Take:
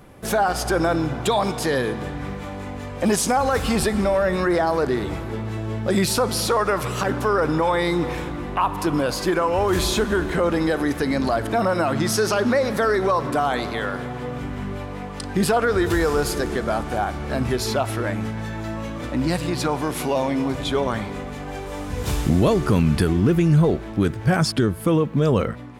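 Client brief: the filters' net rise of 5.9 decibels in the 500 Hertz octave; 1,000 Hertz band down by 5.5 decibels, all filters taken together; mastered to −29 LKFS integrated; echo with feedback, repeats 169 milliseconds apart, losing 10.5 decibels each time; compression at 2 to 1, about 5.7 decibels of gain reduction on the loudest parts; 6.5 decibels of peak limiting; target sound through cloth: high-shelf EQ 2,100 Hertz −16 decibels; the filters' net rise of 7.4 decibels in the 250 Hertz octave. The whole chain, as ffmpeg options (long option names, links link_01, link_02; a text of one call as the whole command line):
ffmpeg -i in.wav -af "equalizer=frequency=250:width_type=o:gain=8.5,equalizer=frequency=500:width_type=o:gain=7.5,equalizer=frequency=1000:width_type=o:gain=-8.5,acompressor=threshold=-18dB:ratio=2,alimiter=limit=-13dB:level=0:latency=1,highshelf=frequency=2100:gain=-16,aecho=1:1:169|338|507:0.299|0.0896|0.0269,volume=-6.5dB" out.wav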